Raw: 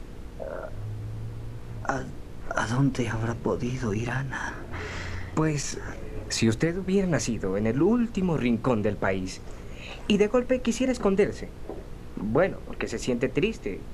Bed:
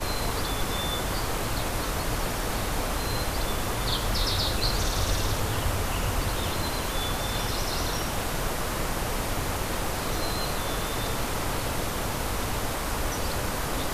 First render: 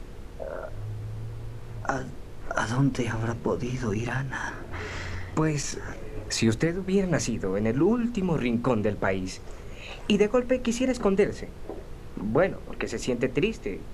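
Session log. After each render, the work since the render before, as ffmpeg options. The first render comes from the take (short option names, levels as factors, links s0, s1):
-af "bandreject=f=60:t=h:w=4,bandreject=f=120:t=h:w=4,bandreject=f=180:t=h:w=4,bandreject=f=240:t=h:w=4,bandreject=f=300:t=h:w=4"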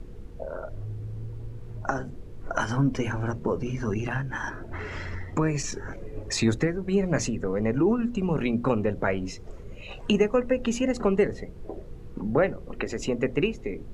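-af "afftdn=nr=10:nf=-42"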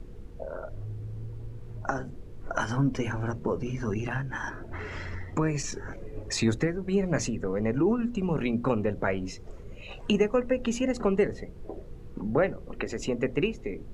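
-af "volume=0.794"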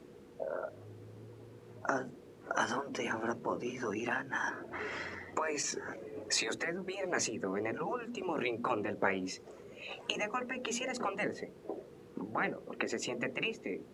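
-af "afftfilt=real='re*lt(hypot(re,im),0.251)':imag='im*lt(hypot(re,im),0.251)':win_size=1024:overlap=0.75,highpass=260"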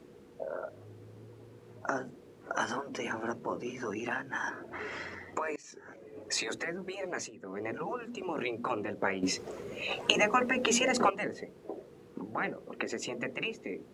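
-filter_complex "[0:a]asplit=6[s0][s1][s2][s3][s4][s5];[s0]atrim=end=5.56,asetpts=PTS-STARTPTS,afade=t=out:st=5.556:d=0.004:c=hsin:silence=0.0630957[s6];[s1]atrim=start=5.56:end=7.31,asetpts=PTS-STARTPTS,afade=t=in:d=0.89:silence=0.0630957,afade=t=out:st=1.46:d=0.29:silence=0.281838[s7];[s2]atrim=start=7.31:end=7.41,asetpts=PTS-STARTPTS,volume=0.282[s8];[s3]atrim=start=7.41:end=9.232,asetpts=PTS-STARTPTS,afade=t=in:d=0.29:silence=0.281838[s9];[s4]atrim=start=9.228:end=11.102,asetpts=PTS-STARTPTS,volume=2.99[s10];[s5]atrim=start=11.098[s11];[s6][s7][s8][s9]concat=n=4:v=0:a=1[s12];[s12][s10]acrossfade=d=0.004:c1=hsin:c2=hsin[s13];[s13][s11]acrossfade=d=0.004:c1=hsin:c2=hsin"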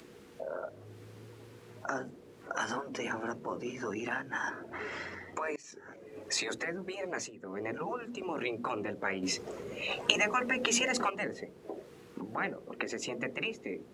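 -filter_complex "[0:a]acrossover=split=1200[s0][s1];[s0]alimiter=level_in=1.58:limit=0.0631:level=0:latency=1,volume=0.631[s2];[s1]acompressor=mode=upward:threshold=0.002:ratio=2.5[s3];[s2][s3]amix=inputs=2:normalize=0"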